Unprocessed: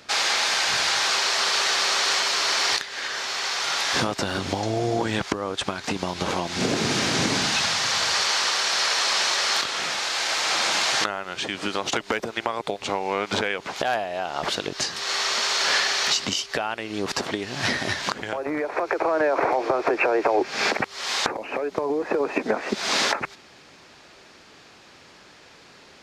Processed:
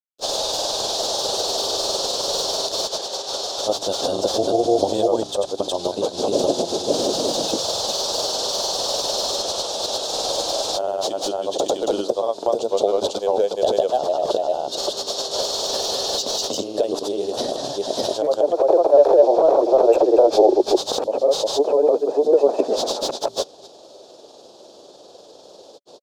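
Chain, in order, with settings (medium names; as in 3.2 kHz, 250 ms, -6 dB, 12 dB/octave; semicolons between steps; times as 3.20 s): treble shelf 4.8 kHz +8 dB; overdrive pedal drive 15 dB, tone 1 kHz, clips at -5 dBFS; hum notches 60/120/180/240/300 Hz; granulator, spray 401 ms, pitch spread up and down by 0 st; FFT filter 190 Hz 0 dB, 570 Hz +12 dB, 2.1 kHz -26 dB, 3.5 kHz +4 dB, 12 kHz +10 dB; trim -1.5 dB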